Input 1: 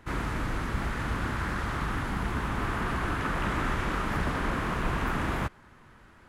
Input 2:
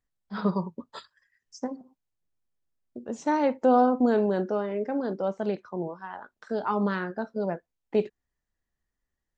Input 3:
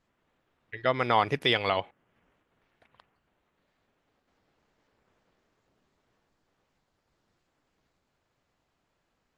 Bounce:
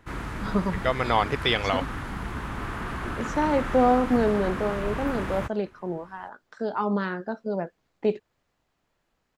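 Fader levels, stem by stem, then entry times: -2.5, +0.5, +1.0 dB; 0.00, 0.10, 0.00 s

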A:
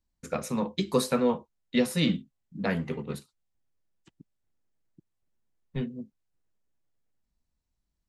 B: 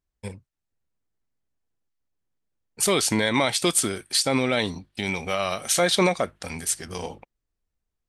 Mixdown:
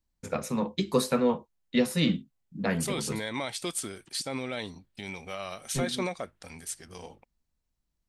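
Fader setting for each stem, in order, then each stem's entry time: 0.0, -11.5 dB; 0.00, 0.00 s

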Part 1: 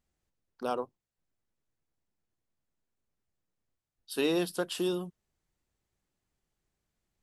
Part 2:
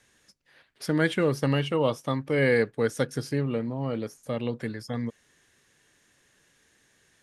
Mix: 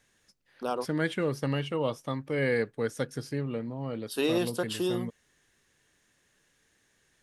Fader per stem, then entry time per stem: +1.0, -5.0 dB; 0.00, 0.00 s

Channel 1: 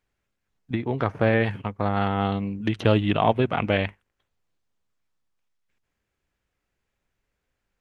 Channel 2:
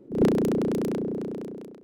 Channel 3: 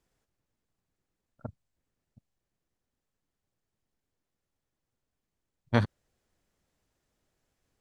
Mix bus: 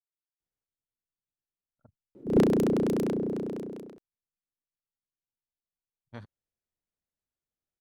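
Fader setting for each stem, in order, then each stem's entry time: off, -0.5 dB, -19.5 dB; off, 2.15 s, 0.40 s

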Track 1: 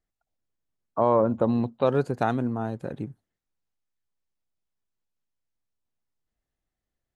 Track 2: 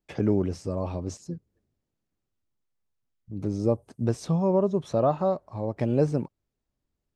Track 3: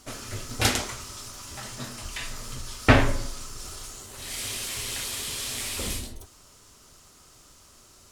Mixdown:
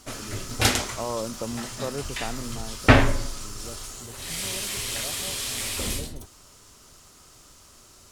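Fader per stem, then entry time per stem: -9.5, -19.5, +2.0 dB; 0.00, 0.00, 0.00 s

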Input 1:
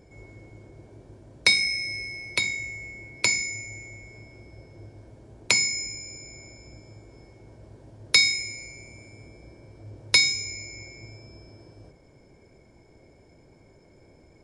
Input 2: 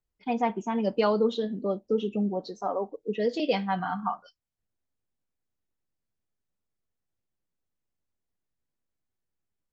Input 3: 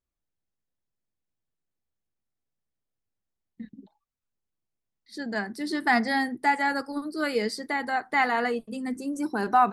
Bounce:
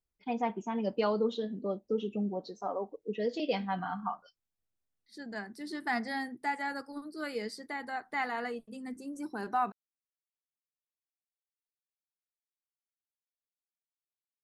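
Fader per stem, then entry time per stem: off, -5.5 dB, -10.0 dB; off, 0.00 s, 0.00 s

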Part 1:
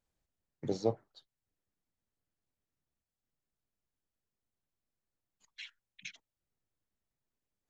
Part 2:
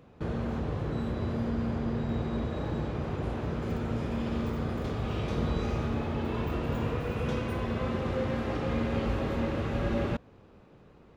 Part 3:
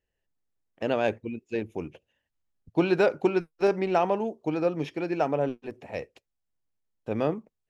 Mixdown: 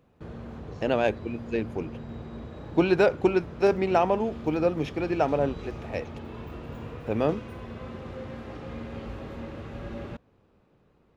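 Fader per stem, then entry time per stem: -13.0, -8.0, +1.5 dB; 0.00, 0.00, 0.00 s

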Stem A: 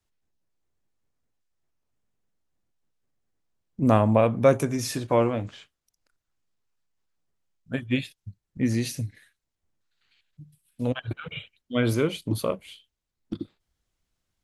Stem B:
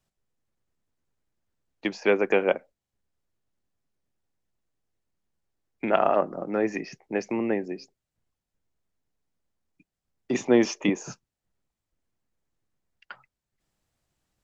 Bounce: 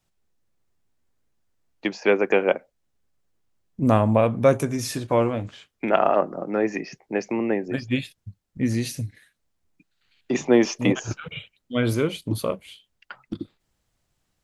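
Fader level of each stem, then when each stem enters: +1.0, +2.5 dB; 0.00, 0.00 s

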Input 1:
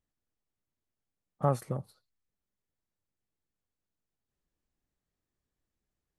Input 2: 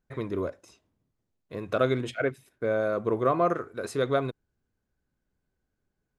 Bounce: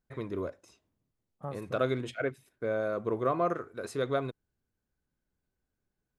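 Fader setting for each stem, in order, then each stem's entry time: -12.0, -4.5 dB; 0.00, 0.00 s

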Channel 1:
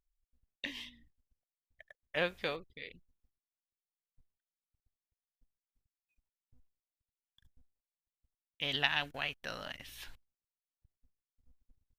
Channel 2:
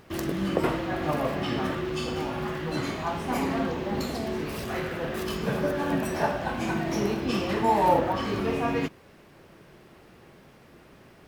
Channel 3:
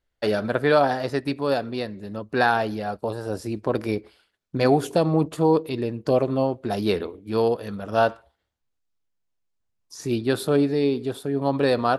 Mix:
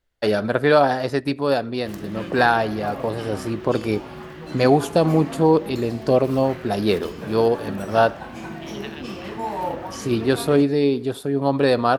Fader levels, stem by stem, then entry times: -8.5, -5.5, +3.0 dB; 0.00, 1.75, 0.00 s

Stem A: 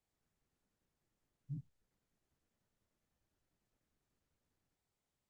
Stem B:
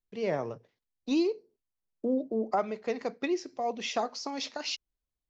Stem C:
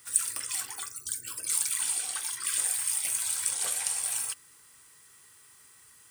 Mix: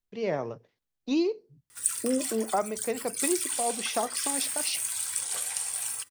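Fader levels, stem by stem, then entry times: -14.0, +1.0, -1.5 dB; 0.00, 0.00, 1.70 s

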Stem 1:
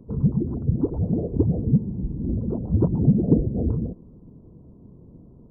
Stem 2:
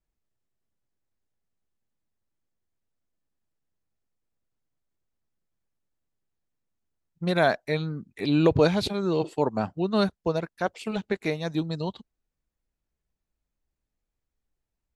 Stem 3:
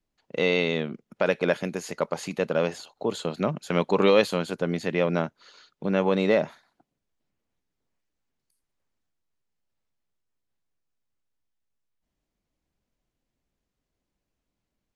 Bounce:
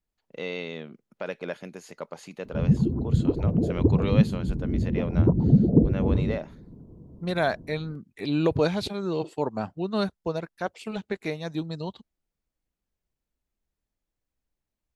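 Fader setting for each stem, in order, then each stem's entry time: 0.0, -3.0, -10.0 dB; 2.45, 0.00, 0.00 s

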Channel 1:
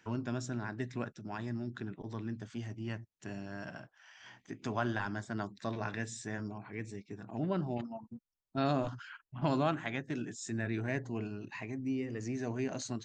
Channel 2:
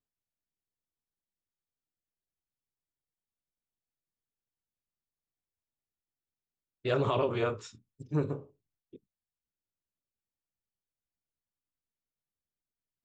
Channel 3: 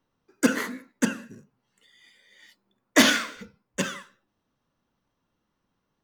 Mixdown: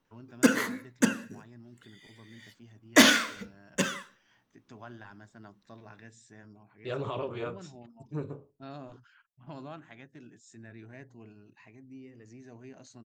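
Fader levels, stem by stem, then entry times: -13.0, -6.0, -0.5 dB; 0.05, 0.00, 0.00 s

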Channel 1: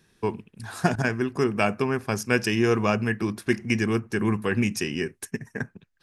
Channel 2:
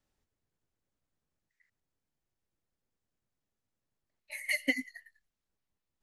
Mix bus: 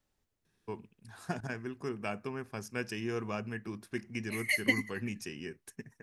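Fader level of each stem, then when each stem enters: -14.0, +1.5 dB; 0.45, 0.00 s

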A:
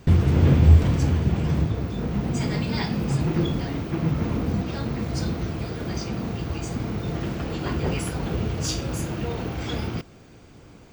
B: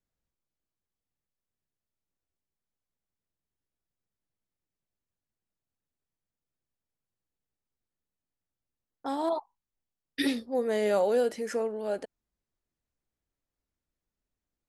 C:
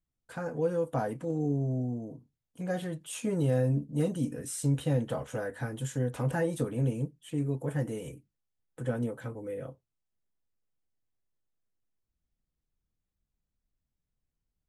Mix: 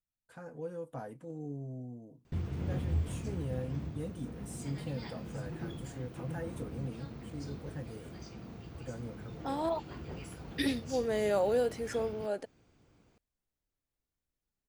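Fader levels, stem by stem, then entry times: -18.0, -3.5, -11.5 dB; 2.25, 0.40, 0.00 s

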